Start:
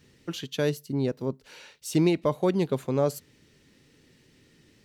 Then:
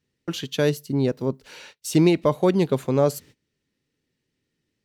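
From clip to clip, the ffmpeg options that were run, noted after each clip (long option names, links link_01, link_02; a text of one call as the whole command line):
ffmpeg -i in.wav -af "agate=range=-23dB:threshold=-50dB:ratio=16:detection=peak,volume=5dB" out.wav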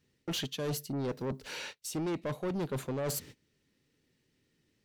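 ffmpeg -i in.wav -af "areverse,acompressor=threshold=-27dB:ratio=16,areverse,asoftclip=type=tanh:threshold=-33dB,volume=3dB" out.wav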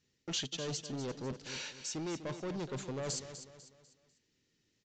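ffmpeg -i in.wav -filter_complex "[0:a]crystalizer=i=2.5:c=0,asplit=2[link_01][link_02];[link_02]aecho=0:1:248|496|744|992:0.282|0.11|0.0429|0.0167[link_03];[link_01][link_03]amix=inputs=2:normalize=0,aresample=16000,aresample=44100,volume=-5.5dB" out.wav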